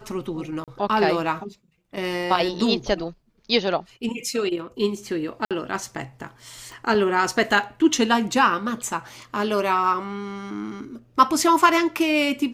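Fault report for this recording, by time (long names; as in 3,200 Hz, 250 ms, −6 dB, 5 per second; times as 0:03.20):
0:00.64–0:00.68: drop-out 37 ms
0:05.45–0:05.51: drop-out 57 ms
0:06.72: click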